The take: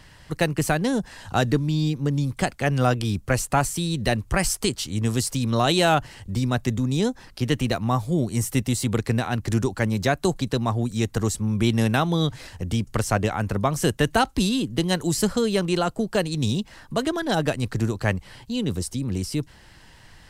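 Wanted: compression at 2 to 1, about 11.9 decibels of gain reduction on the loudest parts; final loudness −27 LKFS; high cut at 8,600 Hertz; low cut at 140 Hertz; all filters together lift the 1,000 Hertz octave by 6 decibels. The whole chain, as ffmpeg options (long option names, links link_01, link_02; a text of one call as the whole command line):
ffmpeg -i in.wav -af "highpass=140,lowpass=8600,equalizer=frequency=1000:width_type=o:gain=8.5,acompressor=threshold=-34dB:ratio=2,volume=5.5dB" out.wav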